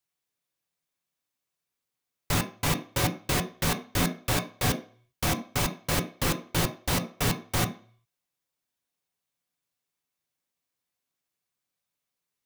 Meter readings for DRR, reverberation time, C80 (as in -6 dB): 4.0 dB, 0.45 s, 18.0 dB